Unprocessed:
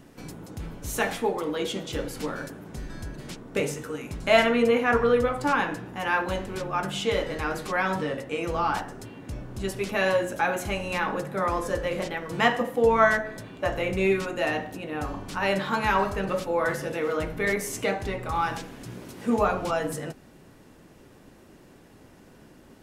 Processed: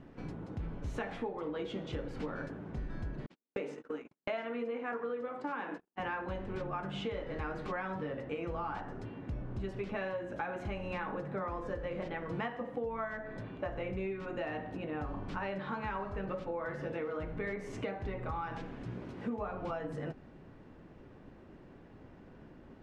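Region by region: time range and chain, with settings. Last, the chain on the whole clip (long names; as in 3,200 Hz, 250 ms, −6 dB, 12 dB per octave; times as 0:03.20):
0:03.26–0:06.00: high-pass filter 220 Hz 24 dB per octave + noise gate −37 dBFS, range −51 dB
whole clip: Bessel low-pass filter 2,000 Hz, order 2; low-shelf EQ 130 Hz +4 dB; downward compressor 12 to 1, threshold −31 dBFS; level −3 dB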